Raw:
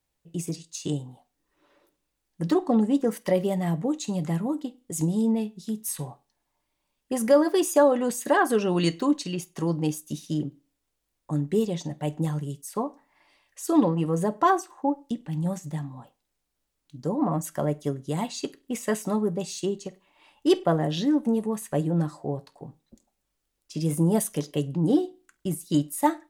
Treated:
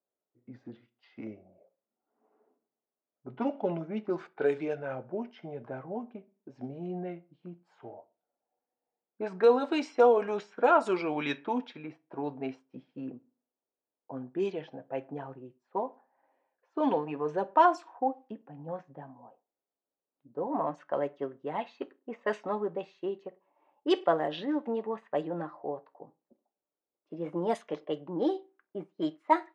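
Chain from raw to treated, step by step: gliding tape speed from 72% -> 106%; band-pass 470–3300 Hz; level-controlled noise filter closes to 600 Hz, open at -22.5 dBFS

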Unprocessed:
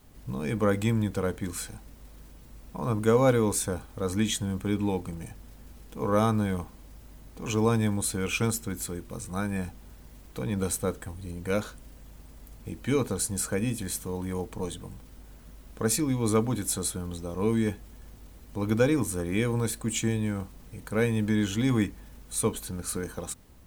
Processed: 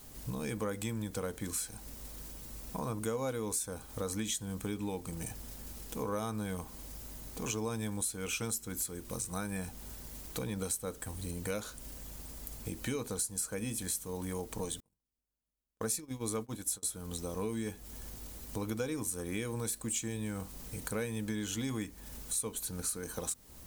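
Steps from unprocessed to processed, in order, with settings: tone controls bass -3 dB, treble +9 dB; compression 4:1, threshold -38 dBFS, peak gain reduction 18.5 dB; 14.80–16.83 s: gate -39 dBFS, range -45 dB; trim +2.5 dB

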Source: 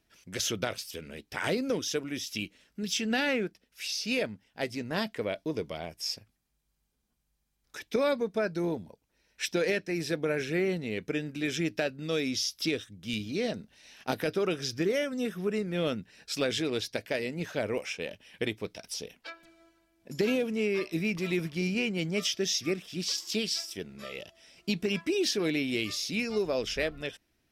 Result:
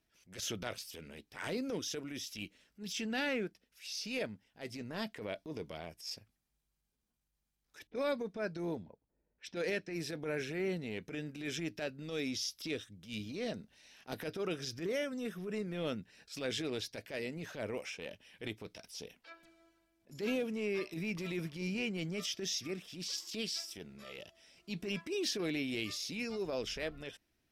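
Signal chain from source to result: 7.87–9.93 s: level-controlled noise filter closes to 540 Hz, open at -26 dBFS; transient shaper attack -11 dB, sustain +1 dB; trim -6 dB

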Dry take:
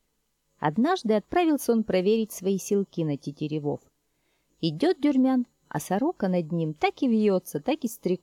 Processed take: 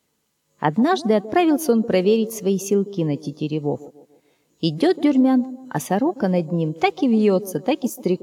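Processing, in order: high-pass 80 Hz 24 dB/octave; on a send: feedback echo behind a band-pass 147 ms, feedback 41%, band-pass 440 Hz, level -16.5 dB; on the sum: trim +5.5 dB

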